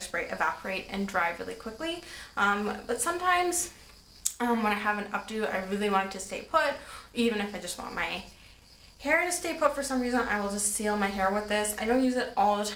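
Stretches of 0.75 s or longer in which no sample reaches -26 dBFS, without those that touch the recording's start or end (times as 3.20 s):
8.16–9.06 s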